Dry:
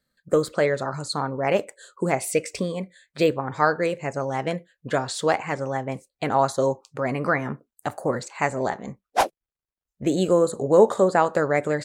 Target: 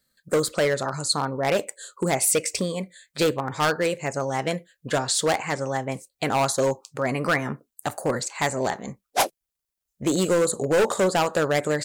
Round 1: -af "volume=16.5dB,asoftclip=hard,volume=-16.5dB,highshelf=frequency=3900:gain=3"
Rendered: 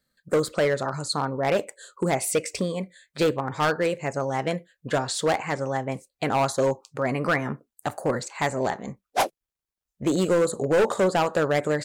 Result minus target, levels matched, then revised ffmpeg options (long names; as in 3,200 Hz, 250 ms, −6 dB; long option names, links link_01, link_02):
8,000 Hz band −6.0 dB
-af "volume=16.5dB,asoftclip=hard,volume=-16.5dB,highshelf=frequency=3900:gain=11.5"